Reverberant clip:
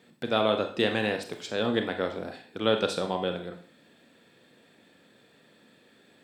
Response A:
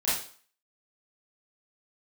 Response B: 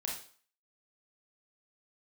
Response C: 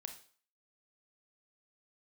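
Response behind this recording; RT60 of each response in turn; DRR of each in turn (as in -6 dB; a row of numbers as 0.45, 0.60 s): C; 0.45, 0.45, 0.45 s; -11.5, -2.5, 5.5 dB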